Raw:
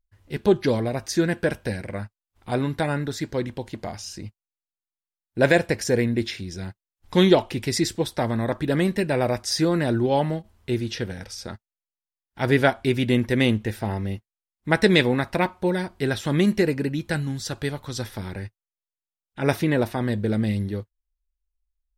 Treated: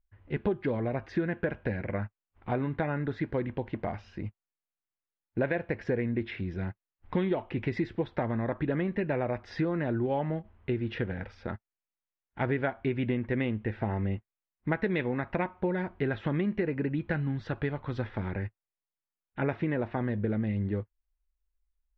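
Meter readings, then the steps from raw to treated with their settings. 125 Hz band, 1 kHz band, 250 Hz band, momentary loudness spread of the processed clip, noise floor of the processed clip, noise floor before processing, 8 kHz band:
−6.0 dB, −7.5 dB, −7.5 dB, 8 LU, below −85 dBFS, below −85 dBFS, below −35 dB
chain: low-pass filter 2,500 Hz 24 dB per octave
downward compressor 6 to 1, threshold −26 dBFS, peak gain reduction 14 dB

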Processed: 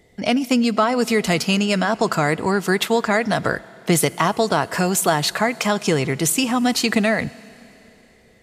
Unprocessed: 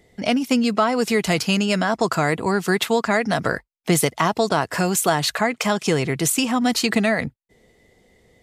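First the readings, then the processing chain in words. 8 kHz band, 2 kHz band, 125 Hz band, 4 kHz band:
+1.0 dB, +1.0 dB, +1.0 dB, +1.0 dB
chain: four-comb reverb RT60 3.5 s, combs from 26 ms, DRR 20 dB
level +1 dB

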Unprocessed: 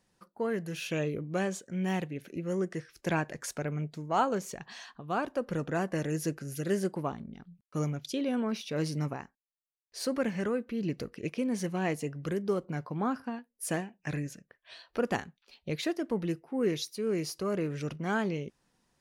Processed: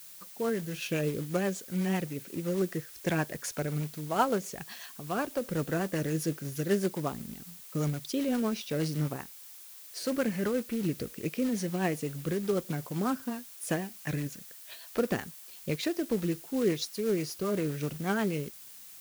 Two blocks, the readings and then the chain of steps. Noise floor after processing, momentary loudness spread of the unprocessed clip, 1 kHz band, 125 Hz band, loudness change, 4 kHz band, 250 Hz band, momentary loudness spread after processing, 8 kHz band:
−49 dBFS, 9 LU, −1.0 dB, +1.5 dB, +1.0 dB, +1.5 dB, +1.5 dB, 12 LU, +3.0 dB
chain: floating-point word with a short mantissa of 2 bits
rotating-speaker cabinet horn 8 Hz
background noise blue −52 dBFS
level +3 dB

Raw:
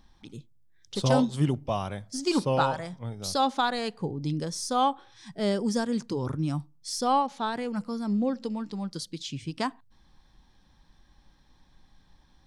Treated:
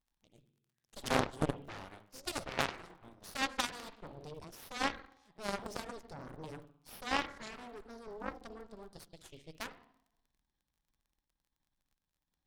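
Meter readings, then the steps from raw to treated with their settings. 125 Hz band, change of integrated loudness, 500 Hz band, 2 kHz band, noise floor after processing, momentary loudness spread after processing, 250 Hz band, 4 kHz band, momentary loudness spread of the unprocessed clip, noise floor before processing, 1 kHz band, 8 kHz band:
−16.0 dB, −10.5 dB, −12.5 dB, −2.0 dB, below −85 dBFS, 19 LU, −15.5 dB, −7.5 dB, 11 LU, −62 dBFS, −12.5 dB, −9.0 dB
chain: spring reverb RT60 1 s, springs 50/57 ms, chirp 50 ms, DRR 7 dB
surface crackle 73 per second −42 dBFS
harmonic generator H 2 −19 dB, 3 −9 dB, 6 −15 dB, 8 −15 dB, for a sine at −11 dBFS
level −3.5 dB

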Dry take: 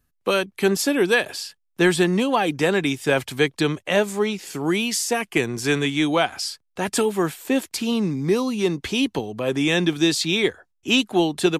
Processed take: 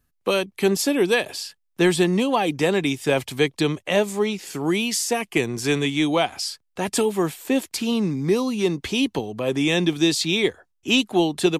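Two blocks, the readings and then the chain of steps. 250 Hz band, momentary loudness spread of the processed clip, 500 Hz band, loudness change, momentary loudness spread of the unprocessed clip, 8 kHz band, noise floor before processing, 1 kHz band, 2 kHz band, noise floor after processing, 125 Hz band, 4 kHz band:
0.0 dB, 6 LU, 0.0 dB, −0.5 dB, 6 LU, 0.0 dB, −71 dBFS, −1.0 dB, −2.5 dB, −71 dBFS, 0.0 dB, 0.0 dB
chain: dynamic equaliser 1,500 Hz, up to −7 dB, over −41 dBFS, Q 3

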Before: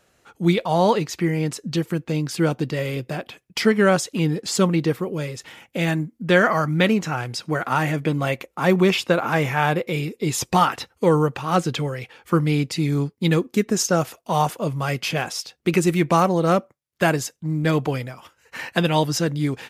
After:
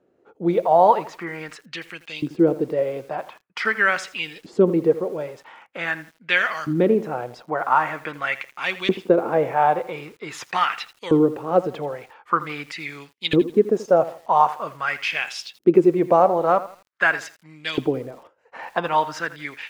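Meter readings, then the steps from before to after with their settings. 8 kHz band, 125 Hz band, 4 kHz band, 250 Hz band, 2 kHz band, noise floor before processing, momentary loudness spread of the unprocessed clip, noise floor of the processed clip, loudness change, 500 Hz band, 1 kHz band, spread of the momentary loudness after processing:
below −10 dB, −11.0 dB, −3.5 dB, −2.5 dB, +1.5 dB, −66 dBFS, 9 LU, −64 dBFS, 0.0 dB, +1.5 dB, +2.5 dB, 15 LU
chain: auto-filter band-pass saw up 0.45 Hz 310–3,400 Hz
feedback echo at a low word length 82 ms, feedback 35%, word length 8 bits, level −15 dB
level +7.5 dB

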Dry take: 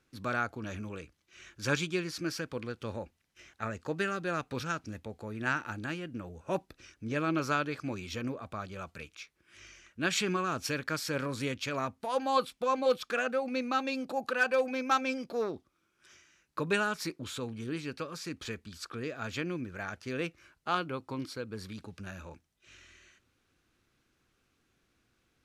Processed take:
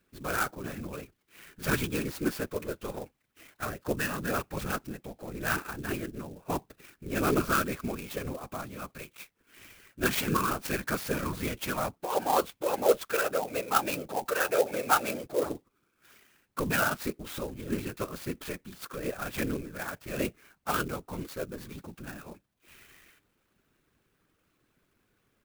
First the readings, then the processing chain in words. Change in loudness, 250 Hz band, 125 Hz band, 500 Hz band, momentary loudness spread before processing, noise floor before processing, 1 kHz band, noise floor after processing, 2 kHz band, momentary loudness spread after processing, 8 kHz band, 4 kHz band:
+2.5 dB, +1.5 dB, +2.0 dB, +2.5 dB, 15 LU, −75 dBFS, +2.5 dB, −75 dBFS, +0.5 dB, 16 LU, +5.5 dB, 0.0 dB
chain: high-shelf EQ 9,400 Hz −11.5 dB
comb filter 6.2 ms, depth 79%
random phases in short frames
converter with an unsteady clock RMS 0.046 ms

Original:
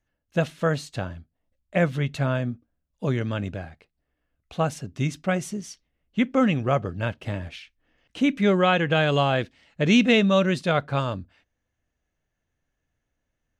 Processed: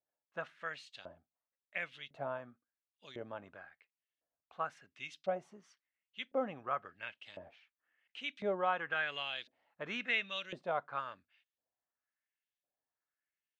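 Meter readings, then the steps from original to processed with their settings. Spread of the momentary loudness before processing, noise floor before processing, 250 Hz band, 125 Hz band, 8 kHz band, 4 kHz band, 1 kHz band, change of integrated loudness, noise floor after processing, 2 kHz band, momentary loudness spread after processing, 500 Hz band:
16 LU, −80 dBFS, −26.5 dB, −31.5 dB, below −20 dB, −13.0 dB, −11.5 dB, −15.5 dB, below −85 dBFS, −11.0 dB, 20 LU, −16.0 dB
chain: auto-filter band-pass saw up 0.95 Hz 590–4,000 Hz
level −6 dB

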